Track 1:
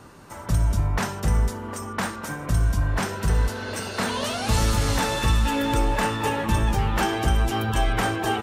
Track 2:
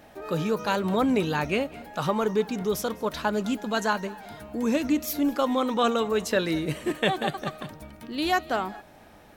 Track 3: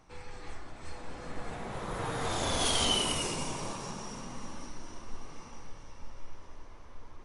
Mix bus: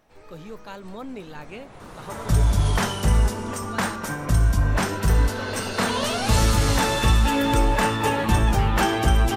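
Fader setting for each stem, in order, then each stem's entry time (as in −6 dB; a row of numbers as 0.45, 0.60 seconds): +2.5, −13.0, −6.5 decibels; 1.80, 0.00, 0.00 seconds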